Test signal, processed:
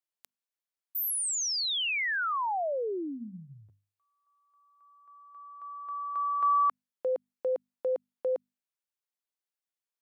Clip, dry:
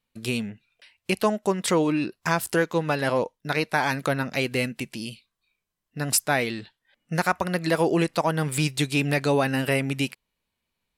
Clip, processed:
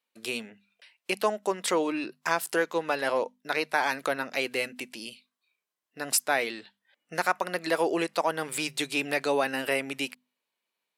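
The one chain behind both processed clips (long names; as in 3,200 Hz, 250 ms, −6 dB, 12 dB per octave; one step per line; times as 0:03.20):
high-pass filter 190 Hz 12 dB per octave
bass and treble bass −13 dB, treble −1 dB
mains-hum notches 50/100/150/200/250 Hz
level −2 dB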